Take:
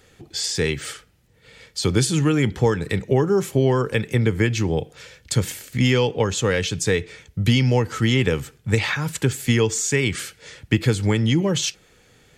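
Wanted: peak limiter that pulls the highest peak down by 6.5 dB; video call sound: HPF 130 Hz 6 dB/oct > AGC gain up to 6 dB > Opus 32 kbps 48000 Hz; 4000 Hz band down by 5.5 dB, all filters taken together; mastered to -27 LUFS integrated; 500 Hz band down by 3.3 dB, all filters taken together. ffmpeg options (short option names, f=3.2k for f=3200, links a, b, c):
-af "equalizer=f=500:t=o:g=-3.5,equalizer=f=4k:t=o:g=-7.5,alimiter=limit=-13dB:level=0:latency=1,highpass=f=130:p=1,dynaudnorm=m=6dB,volume=-0.5dB" -ar 48000 -c:a libopus -b:a 32k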